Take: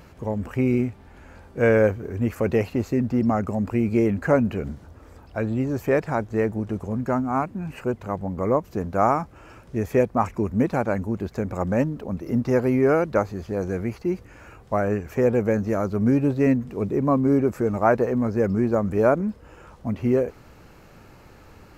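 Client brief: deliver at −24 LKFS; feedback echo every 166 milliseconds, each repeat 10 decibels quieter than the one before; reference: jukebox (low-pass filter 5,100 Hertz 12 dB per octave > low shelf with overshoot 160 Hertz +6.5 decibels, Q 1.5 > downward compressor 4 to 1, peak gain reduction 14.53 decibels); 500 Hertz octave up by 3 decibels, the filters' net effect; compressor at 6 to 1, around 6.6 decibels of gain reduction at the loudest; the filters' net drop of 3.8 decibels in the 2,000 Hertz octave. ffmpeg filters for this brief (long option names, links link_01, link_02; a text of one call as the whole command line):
ffmpeg -i in.wav -af "equalizer=frequency=500:width_type=o:gain=4.5,equalizer=frequency=2000:width_type=o:gain=-5.5,acompressor=threshold=-18dB:ratio=6,lowpass=5100,lowshelf=frequency=160:width_type=q:width=1.5:gain=6.5,aecho=1:1:166|332|498|664:0.316|0.101|0.0324|0.0104,acompressor=threshold=-33dB:ratio=4,volume=11.5dB" out.wav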